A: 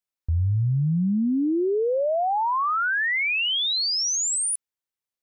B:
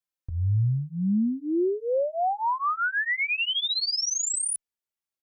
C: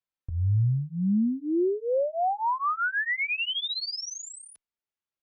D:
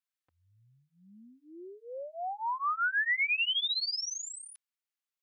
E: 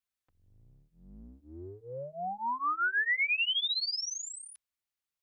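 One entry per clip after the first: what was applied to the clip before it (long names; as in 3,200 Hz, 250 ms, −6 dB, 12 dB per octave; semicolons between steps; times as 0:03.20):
barber-pole flanger 3.3 ms −0.55 Hz
high-frequency loss of the air 150 metres
high-pass filter 1,300 Hz 12 dB per octave
sub-octave generator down 2 octaves, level +3 dB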